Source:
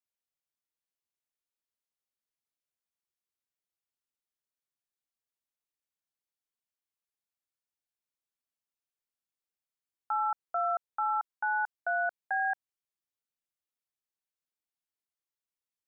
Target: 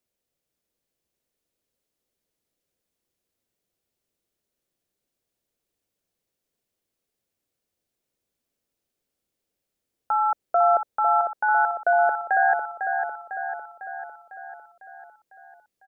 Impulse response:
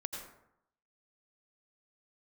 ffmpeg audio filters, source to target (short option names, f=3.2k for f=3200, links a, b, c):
-af "lowshelf=f=710:t=q:w=1.5:g=8,aecho=1:1:501|1002|1503|2004|2505|3006|3507|4008:0.473|0.274|0.159|0.0923|0.0535|0.0311|0.018|0.0104,volume=8.5dB"